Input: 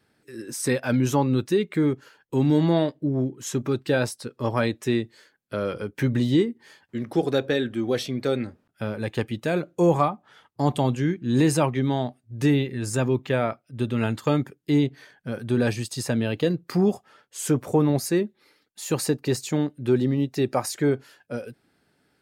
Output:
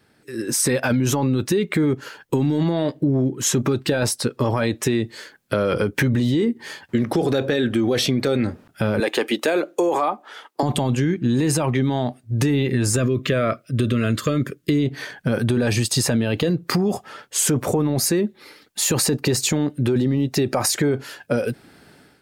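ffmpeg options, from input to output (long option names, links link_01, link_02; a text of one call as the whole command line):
ffmpeg -i in.wav -filter_complex "[0:a]asettb=1/sr,asplit=3[link_01][link_02][link_03];[link_01]atrim=end=9.004[link_04];[link_02]atrim=start=9:end=10.63,asetpts=PTS-STARTPTS,afade=type=in:duration=0.004:curve=qsin,afade=type=out:start_time=1.626:duration=0.004:curve=qsin,highpass=frequency=300:width=0.5412,highpass=frequency=300:width=1.3066[link_05];[link_03]atrim=start=10.626[link_06];[link_04][link_05]acrossfade=duration=0.004:curve1=hsin:curve2=qsin[link_07];[link_07][link_06]acrossfade=duration=0.004:curve1=qsin:curve2=hsin,asettb=1/sr,asplit=3[link_08][link_09][link_10];[link_08]atrim=end=12.964[link_11];[link_09]atrim=start=12.96:end=14.86,asetpts=PTS-STARTPTS,afade=type=in:duration=0.004:curve=qsin,afade=type=out:start_time=1.896:duration=0.004:curve=qsin,asuperstop=centerf=830:order=8:qfactor=2.3[link_12];[link_10]atrim=start=14.856[link_13];[link_11][link_12]acrossfade=duration=0.004:curve1=hsin:curve2=qsin[link_14];[link_14][link_13]acrossfade=duration=0.004:curve1=qsin:curve2=hsin,dynaudnorm=framelen=360:gausssize=3:maxgain=11.5dB,alimiter=limit=-14dB:level=0:latency=1:release=22,acompressor=threshold=-24dB:ratio=4,volume=7dB" out.wav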